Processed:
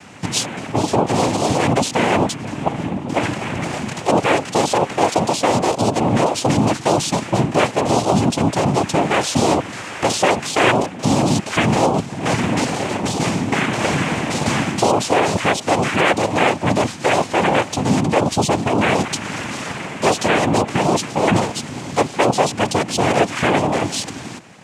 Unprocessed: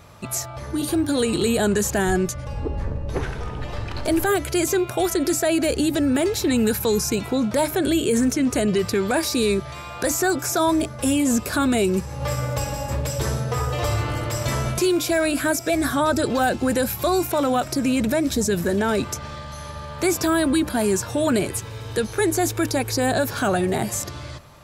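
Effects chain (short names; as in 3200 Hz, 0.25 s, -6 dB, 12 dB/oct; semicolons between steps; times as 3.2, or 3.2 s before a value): dynamic EQ 1000 Hz, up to +4 dB, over -32 dBFS, Q 0.9; in parallel at +2 dB: vocal rider 0.5 s; on the sum: noise vocoder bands 4; gain -3.5 dB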